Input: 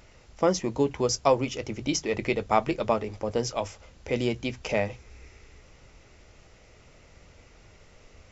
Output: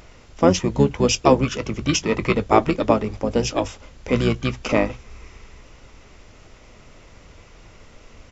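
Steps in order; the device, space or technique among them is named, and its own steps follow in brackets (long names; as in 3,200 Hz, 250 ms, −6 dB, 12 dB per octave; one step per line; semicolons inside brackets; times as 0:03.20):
octave pedal (pitch-shifted copies added −12 semitones −3 dB)
level +5.5 dB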